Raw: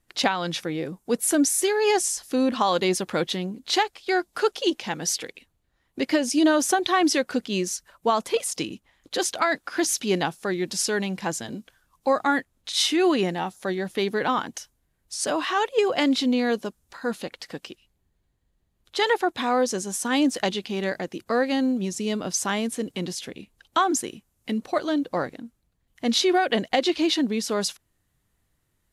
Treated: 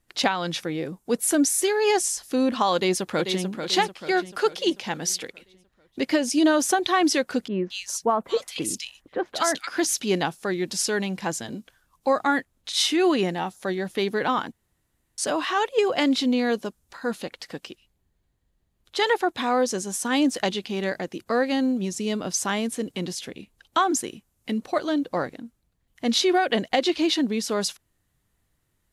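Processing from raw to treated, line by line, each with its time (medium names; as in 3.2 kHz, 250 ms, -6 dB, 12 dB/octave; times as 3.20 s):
2.74–3.43 s: echo throw 440 ms, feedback 50%, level -7.5 dB
7.48–9.67 s: bands offset in time lows, highs 220 ms, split 1.9 kHz
14.52–15.18 s: room tone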